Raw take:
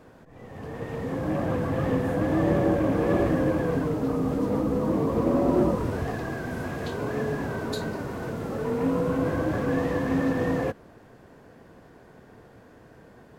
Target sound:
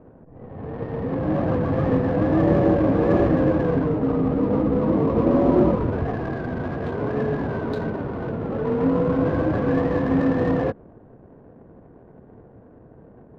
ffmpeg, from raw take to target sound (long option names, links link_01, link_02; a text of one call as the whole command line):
ffmpeg -i in.wav -af "adynamicsmooth=sensitivity=5.5:basefreq=660,lowpass=frequency=1700:poles=1,volume=5dB" out.wav